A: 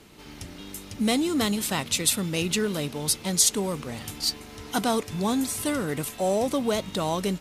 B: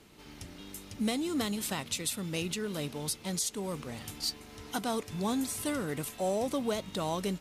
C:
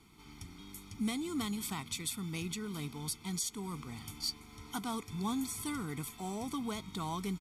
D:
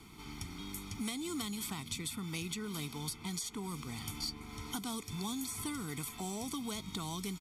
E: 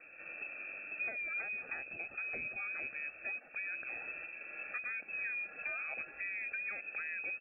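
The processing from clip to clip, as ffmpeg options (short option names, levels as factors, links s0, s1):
-af "alimiter=limit=0.178:level=0:latency=1:release=272,volume=0.501"
-af "aecho=1:1:0.9:0.97,volume=0.447"
-filter_complex "[0:a]acrossover=split=500|2900[s0][s1][s2];[s0]acompressor=threshold=0.00398:ratio=4[s3];[s1]acompressor=threshold=0.00178:ratio=4[s4];[s2]acompressor=threshold=0.00398:ratio=4[s5];[s3][s4][s5]amix=inputs=3:normalize=0,volume=2.24"
-af "lowpass=f=2300:t=q:w=0.5098,lowpass=f=2300:t=q:w=0.6013,lowpass=f=2300:t=q:w=0.9,lowpass=f=2300:t=q:w=2.563,afreqshift=-2700"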